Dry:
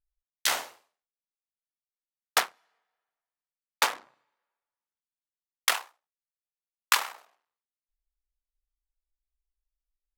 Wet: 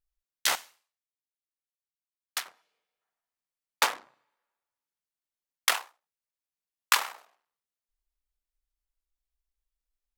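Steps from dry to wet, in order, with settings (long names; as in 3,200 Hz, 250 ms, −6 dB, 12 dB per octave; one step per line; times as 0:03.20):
0:00.55–0:02.46: guitar amp tone stack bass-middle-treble 5-5-5
0:02.62–0:03.01: gain on a spectral selection 610–2,100 Hz −9 dB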